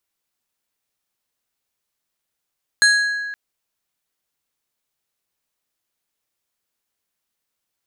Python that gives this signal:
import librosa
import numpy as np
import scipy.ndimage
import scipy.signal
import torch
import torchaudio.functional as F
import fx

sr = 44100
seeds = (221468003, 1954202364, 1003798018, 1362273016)

y = fx.strike_glass(sr, length_s=0.52, level_db=-10.5, body='plate', hz=1660.0, decay_s=1.78, tilt_db=4, modes=5)